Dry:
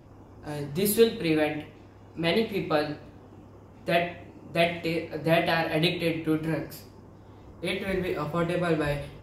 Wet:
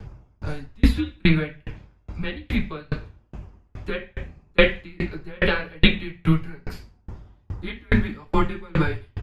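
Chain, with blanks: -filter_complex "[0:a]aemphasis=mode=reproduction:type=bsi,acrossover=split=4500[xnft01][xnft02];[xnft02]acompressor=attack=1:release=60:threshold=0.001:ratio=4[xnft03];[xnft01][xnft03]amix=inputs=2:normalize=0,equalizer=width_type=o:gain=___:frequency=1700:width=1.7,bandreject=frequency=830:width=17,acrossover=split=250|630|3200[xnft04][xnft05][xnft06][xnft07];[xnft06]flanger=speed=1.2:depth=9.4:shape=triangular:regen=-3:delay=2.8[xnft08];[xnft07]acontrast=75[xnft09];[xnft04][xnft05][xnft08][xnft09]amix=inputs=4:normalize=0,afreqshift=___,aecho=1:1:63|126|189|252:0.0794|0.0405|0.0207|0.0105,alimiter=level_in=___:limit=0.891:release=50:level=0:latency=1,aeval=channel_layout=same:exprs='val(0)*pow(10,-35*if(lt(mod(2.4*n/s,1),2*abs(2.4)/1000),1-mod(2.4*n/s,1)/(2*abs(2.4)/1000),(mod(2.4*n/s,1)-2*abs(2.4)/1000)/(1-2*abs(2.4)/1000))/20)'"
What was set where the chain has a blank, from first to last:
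8.5, -150, 2.99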